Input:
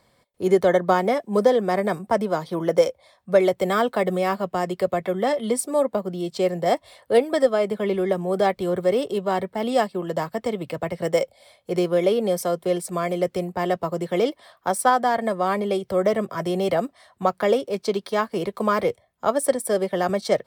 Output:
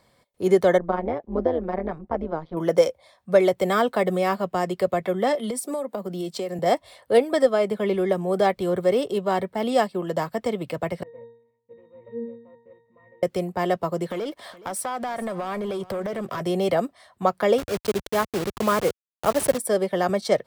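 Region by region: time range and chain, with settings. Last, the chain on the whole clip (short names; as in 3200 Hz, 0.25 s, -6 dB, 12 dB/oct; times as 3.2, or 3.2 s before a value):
0.78–2.57 AM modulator 160 Hz, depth 70% + tape spacing loss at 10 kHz 39 dB
5.35–6.59 steep high-pass 160 Hz + high shelf 8600 Hz +6.5 dB + compressor 12:1, threshold -24 dBFS
11.03–13.23 CVSD 16 kbps + octave resonator A#, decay 0.59 s
14.1–16.41 compressor 16:1, threshold -30 dBFS + sample leveller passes 2 + echo 0.419 s -18.5 dB
17.58–19.58 level-crossing sampler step -25 dBFS + HPF 59 Hz
whole clip: dry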